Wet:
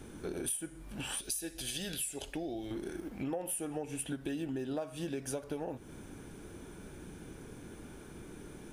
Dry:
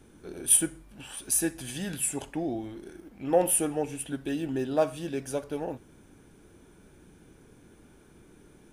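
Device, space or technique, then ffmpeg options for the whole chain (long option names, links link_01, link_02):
serial compression, leveller first: -filter_complex "[0:a]asettb=1/sr,asplit=3[link_01][link_02][link_03];[link_01]atrim=end=1.214[link_04];[link_02]atrim=start=1.21:end=2.71,asetpts=PTS-STARTPTS,afade=type=in:duration=0.004:curve=qsin,afade=type=out:start_time=1.496:duration=0.004:curve=qsin,equalizer=frequency=125:width_type=o:width=1:gain=-10,equalizer=frequency=250:width_type=o:width=1:gain=-9,equalizer=frequency=1000:width_type=o:width=1:gain=-12,equalizer=frequency=2000:width_type=o:width=1:gain=-5,equalizer=frequency=4000:width_type=o:width=1:gain=5,equalizer=frequency=8000:width_type=o:width=1:gain=-4[link_05];[link_03]atrim=start=2.706[link_06];[link_04][link_05]acrossfade=duration=0.004:curve1=hsin:curve2=qsin[link_07];[link_07][link_06]acrossfade=duration=0.004:curve1=qsin:curve2=hsin,acompressor=threshold=-32dB:ratio=2,acompressor=threshold=-42dB:ratio=5,volume=6.5dB"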